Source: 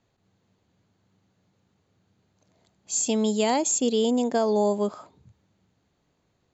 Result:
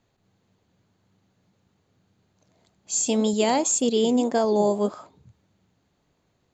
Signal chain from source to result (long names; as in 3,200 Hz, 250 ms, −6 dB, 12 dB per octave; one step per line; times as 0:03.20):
flanger 1.8 Hz, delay 0.1 ms, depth 8.5 ms, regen +85%
level +6 dB